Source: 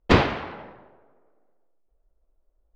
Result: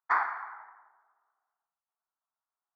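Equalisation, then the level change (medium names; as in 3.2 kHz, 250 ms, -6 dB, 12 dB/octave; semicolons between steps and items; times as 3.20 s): Savitzky-Golay filter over 41 samples; high-pass 800 Hz 24 dB/octave; static phaser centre 1.3 kHz, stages 4; 0.0 dB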